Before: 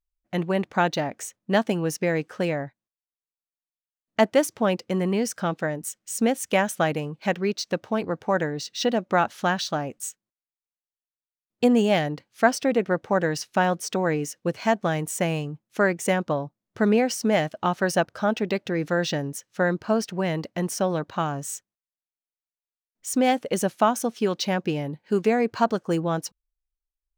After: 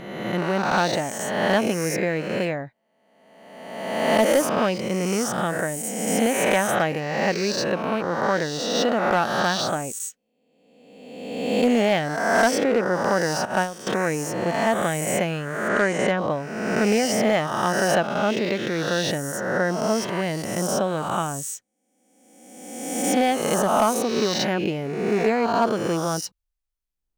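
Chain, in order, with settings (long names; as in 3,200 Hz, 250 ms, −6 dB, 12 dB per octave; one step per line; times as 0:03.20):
peak hold with a rise ahead of every peak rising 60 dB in 1.43 s
0:13.45–0:13.87: noise gate −18 dBFS, range −13 dB
0:15.68–0:16.18: low-pass filter 5,600 Hz 12 dB per octave
gain into a clipping stage and back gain 10 dB
level −1.5 dB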